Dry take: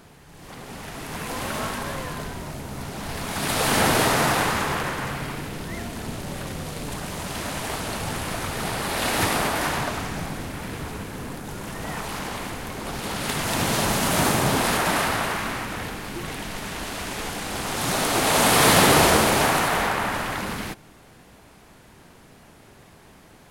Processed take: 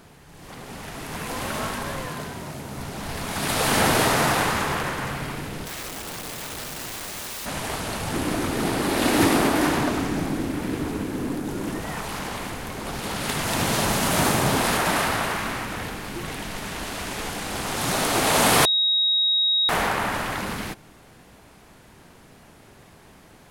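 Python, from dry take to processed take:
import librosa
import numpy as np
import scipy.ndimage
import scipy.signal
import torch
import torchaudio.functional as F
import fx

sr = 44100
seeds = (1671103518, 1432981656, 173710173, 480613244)

y = fx.highpass(x, sr, hz=88.0, slope=12, at=(2.06, 2.77))
y = fx.overflow_wrap(y, sr, gain_db=29.0, at=(5.65, 7.45), fade=0.02)
y = fx.peak_eq(y, sr, hz=300.0, db=12.5, octaves=0.96, at=(8.13, 11.8))
y = fx.edit(y, sr, fx.bleep(start_s=18.65, length_s=1.04, hz=3790.0, db=-17.5), tone=tone)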